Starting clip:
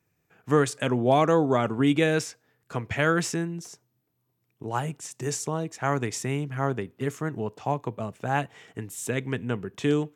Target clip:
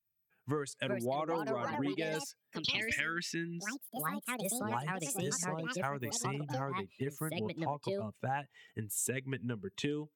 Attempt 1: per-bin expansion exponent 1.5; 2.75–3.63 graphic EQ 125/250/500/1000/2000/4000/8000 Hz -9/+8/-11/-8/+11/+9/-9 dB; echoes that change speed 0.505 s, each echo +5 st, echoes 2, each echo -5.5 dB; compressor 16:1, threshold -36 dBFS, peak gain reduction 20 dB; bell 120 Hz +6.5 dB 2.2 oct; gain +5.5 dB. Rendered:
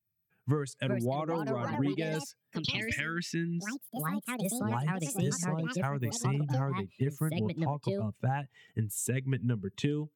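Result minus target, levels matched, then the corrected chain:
125 Hz band +6.5 dB
per-bin expansion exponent 1.5; 2.75–3.63 graphic EQ 125/250/500/1000/2000/4000/8000 Hz -9/+8/-11/-8/+11/+9/-9 dB; echoes that change speed 0.505 s, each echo +5 st, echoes 2, each echo -5.5 dB; compressor 16:1, threshold -36 dBFS, peak gain reduction 20 dB; bell 120 Hz -4 dB 2.2 oct; gain +5.5 dB

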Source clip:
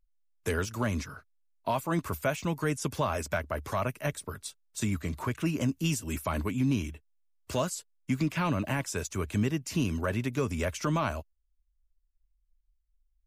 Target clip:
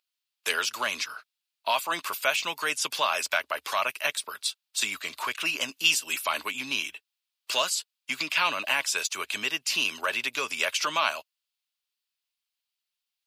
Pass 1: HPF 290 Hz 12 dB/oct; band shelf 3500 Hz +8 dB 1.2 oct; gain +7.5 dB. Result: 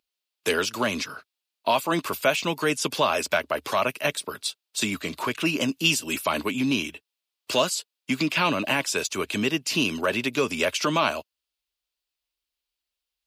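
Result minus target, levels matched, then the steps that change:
250 Hz band +15.5 dB
change: HPF 940 Hz 12 dB/oct

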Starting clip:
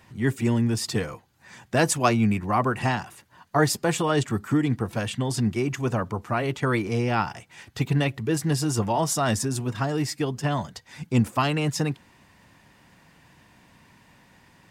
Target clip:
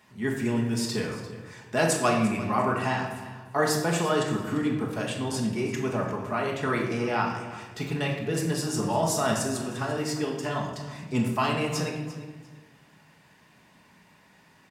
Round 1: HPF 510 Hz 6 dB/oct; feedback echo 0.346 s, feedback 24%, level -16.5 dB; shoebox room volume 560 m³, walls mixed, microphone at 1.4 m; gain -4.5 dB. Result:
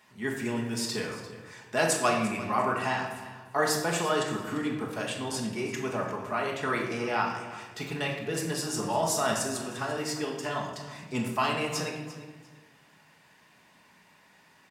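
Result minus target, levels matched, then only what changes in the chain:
250 Hz band -3.0 dB
change: HPF 190 Hz 6 dB/oct

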